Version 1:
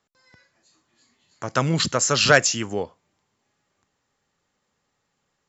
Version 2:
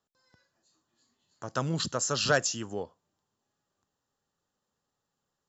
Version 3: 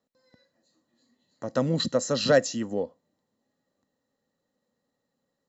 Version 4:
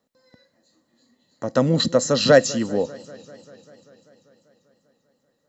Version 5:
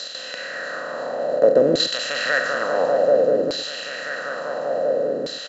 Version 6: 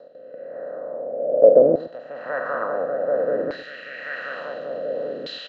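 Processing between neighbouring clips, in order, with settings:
parametric band 2,200 Hz −13.5 dB 0.37 octaves; level −8.5 dB
hollow resonant body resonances 250/510/1,900/4,000 Hz, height 15 dB, ringing for 25 ms; level −4 dB
feedback echo with a swinging delay time 196 ms, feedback 73%, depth 94 cents, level −22.5 dB; level +6.5 dB
compressor on every frequency bin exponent 0.2; auto-filter band-pass saw down 0.57 Hz 330–4,300 Hz; single-tap delay 117 ms −14 dB
low-pass filter sweep 560 Hz → 3,200 Hz, 0:01.33–0:04.60; rotating-speaker cabinet horn 1.1 Hz; level −3.5 dB

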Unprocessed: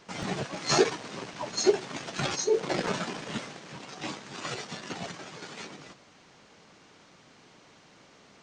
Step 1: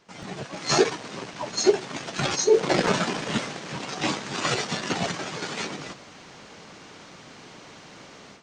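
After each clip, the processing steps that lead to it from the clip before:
automatic gain control gain up to 16 dB
level −5.5 dB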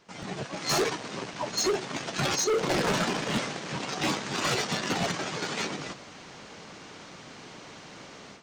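hard clipping −22.5 dBFS, distortion −6 dB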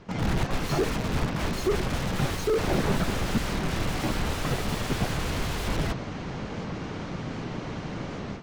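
wrap-around overflow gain 32 dB
RIAA equalisation playback
wow of a warped record 78 rpm, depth 100 cents
level +8 dB

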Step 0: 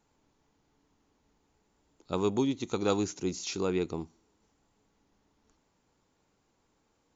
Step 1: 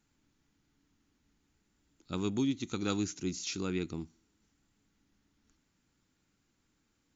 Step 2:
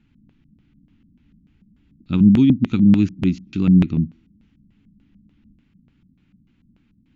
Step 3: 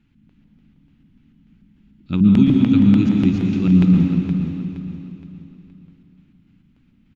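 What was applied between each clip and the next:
flat-topped bell 660 Hz −10 dB; level −1 dB
low shelf with overshoot 340 Hz +11.5 dB, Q 1.5; auto-filter low-pass square 3.4 Hz 200–2,800 Hz; level +5 dB
repeating echo 469 ms, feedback 39%, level −10 dB; dense smooth reverb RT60 2.3 s, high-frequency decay 0.95×, pre-delay 105 ms, DRR 1 dB; level −1 dB

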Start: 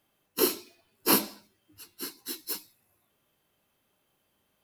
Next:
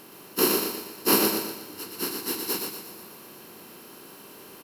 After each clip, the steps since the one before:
compressor on every frequency bin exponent 0.4
repeating echo 120 ms, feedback 57%, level −3.5 dB
expander for the loud parts 1.5 to 1, over −33 dBFS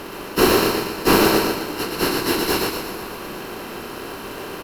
mid-hump overdrive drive 22 dB, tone 1,700 Hz, clips at −7 dBFS
in parallel at −5.5 dB: decimation without filtering 38×
on the sum: level +3.5 dB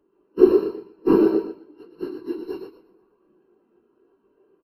every bin expanded away from the loudest bin 2.5 to 1
level +1.5 dB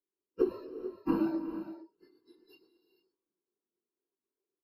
noise reduction from a noise print of the clip's start 26 dB
downward compressor 10 to 1, threshold −18 dBFS, peak gain reduction 12 dB
reverb whose tail is shaped and stops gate 480 ms rising, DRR 9.5 dB
level −6 dB

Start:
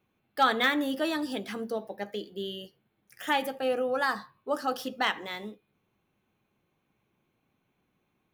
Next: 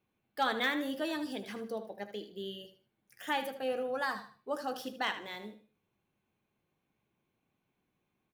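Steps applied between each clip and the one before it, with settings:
notch filter 1,300 Hz, Q 18
on a send: repeating echo 77 ms, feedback 29%, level −11.5 dB
on the sum: level −6 dB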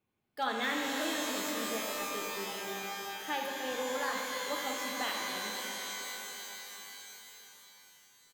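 echo with shifted repeats 300 ms, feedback 37%, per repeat −39 Hz, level −21.5 dB
reverb with rising layers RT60 3.9 s, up +12 semitones, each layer −2 dB, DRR 0.5 dB
level −3.5 dB

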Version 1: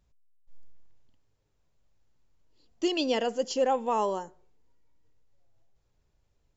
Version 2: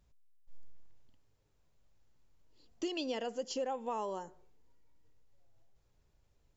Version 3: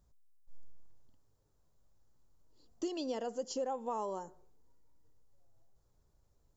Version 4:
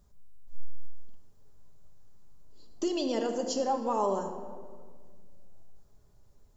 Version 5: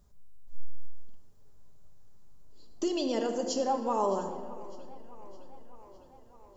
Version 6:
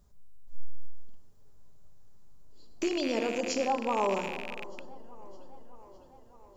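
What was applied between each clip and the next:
downward compressor 3 to 1, threshold −37 dBFS, peak gain reduction 12 dB
drawn EQ curve 1,200 Hz 0 dB, 2,500 Hz −11 dB, 4,200 Hz −3 dB, 8,000 Hz +2 dB
rectangular room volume 2,400 cubic metres, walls mixed, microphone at 1.3 metres; level +7 dB
tape delay 609 ms, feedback 72%, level −19 dB, low-pass 6,000 Hz
loose part that buzzes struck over −51 dBFS, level −26 dBFS

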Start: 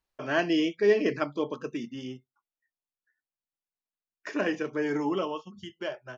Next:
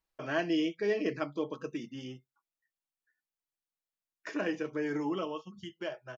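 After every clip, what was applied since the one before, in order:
comb filter 6.2 ms, depth 34%
in parallel at −2.5 dB: downward compressor, threshold −32 dBFS, peak gain reduction 12.5 dB
on the sum: level −8 dB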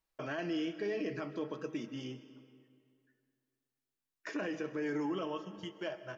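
brickwall limiter −28.5 dBFS, peak gain reduction 11.5 dB
on a send at −13 dB: convolution reverb RT60 2.2 s, pre-delay 90 ms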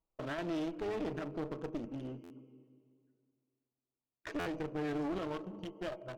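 adaptive Wiener filter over 25 samples
asymmetric clip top −46 dBFS
buffer that repeats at 0:02.23/0:04.39, samples 512, times 5
level +3 dB

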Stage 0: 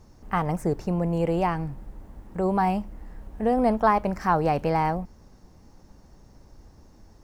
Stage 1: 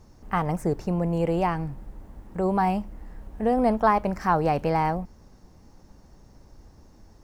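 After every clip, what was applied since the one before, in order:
no processing that can be heard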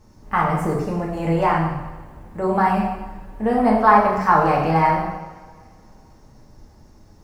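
dynamic equaliser 1,400 Hz, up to +7 dB, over −39 dBFS, Q 0.85
coupled-rooms reverb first 0.98 s, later 2.8 s, from −21 dB, DRR −3.5 dB
level −1.5 dB

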